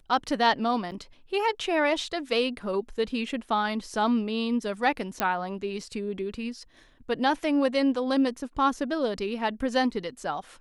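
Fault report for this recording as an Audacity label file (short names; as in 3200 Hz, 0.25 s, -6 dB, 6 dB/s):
0.910000	0.920000	gap 8 ms
5.200000	5.200000	pop -9 dBFS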